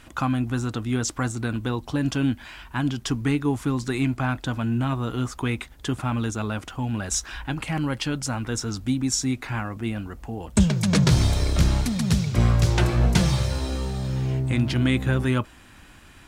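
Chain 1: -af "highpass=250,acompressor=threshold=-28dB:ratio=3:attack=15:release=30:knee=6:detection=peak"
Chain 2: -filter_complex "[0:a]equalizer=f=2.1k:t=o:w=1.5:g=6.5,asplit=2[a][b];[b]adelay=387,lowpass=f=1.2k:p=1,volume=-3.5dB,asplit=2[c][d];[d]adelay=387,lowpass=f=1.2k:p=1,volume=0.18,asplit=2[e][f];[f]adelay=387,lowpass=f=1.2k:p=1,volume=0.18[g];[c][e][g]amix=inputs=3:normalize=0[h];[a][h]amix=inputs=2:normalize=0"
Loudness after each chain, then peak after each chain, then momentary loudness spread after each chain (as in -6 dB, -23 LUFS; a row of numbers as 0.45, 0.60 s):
-31.0, -23.0 LUFS; -12.0, -5.0 dBFS; 6, 8 LU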